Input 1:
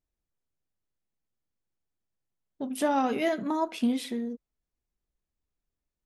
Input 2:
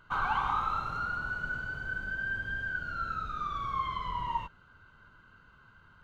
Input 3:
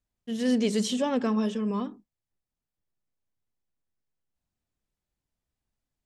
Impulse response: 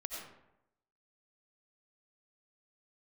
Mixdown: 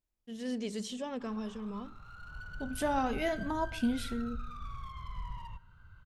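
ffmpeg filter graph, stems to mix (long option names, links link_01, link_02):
-filter_complex "[0:a]volume=-4.5dB,asplit=2[link_01][link_02];[link_02]volume=-16.5dB[link_03];[1:a]acompressor=threshold=-42dB:ratio=2,asoftclip=type=hard:threshold=-37.5dB,adelay=1100,volume=-7dB,asplit=2[link_04][link_05];[link_05]volume=-14dB[link_06];[2:a]volume=-10.5dB,asplit=2[link_07][link_08];[link_08]apad=whole_len=314594[link_09];[link_04][link_09]sidechaincompress=threshold=-52dB:ratio=5:attack=16:release=569[link_10];[3:a]atrim=start_sample=2205[link_11];[link_03][link_06]amix=inputs=2:normalize=0[link_12];[link_12][link_11]afir=irnorm=-1:irlink=0[link_13];[link_01][link_10][link_07][link_13]amix=inputs=4:normalize=0,asubboost=boost=7.5:cutoff=120"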